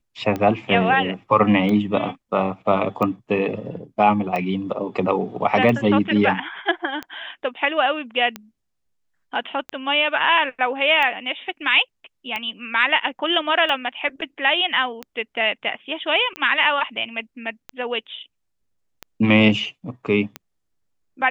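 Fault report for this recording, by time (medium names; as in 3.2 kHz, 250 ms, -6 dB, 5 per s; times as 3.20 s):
tick 45 rpm -14 dBFS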